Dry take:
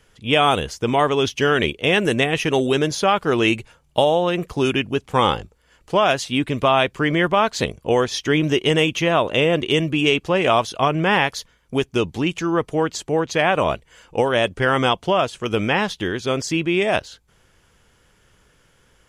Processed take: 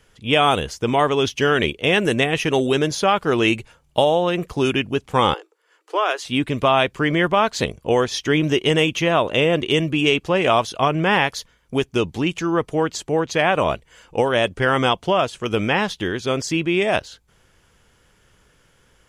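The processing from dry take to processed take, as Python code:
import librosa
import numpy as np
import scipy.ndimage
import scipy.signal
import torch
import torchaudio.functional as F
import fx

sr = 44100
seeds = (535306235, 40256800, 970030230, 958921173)

y = fx.cheby_ripple_highpass(x, sr, hz=310.0, ripple_db=6, at=(5.34, 6.25))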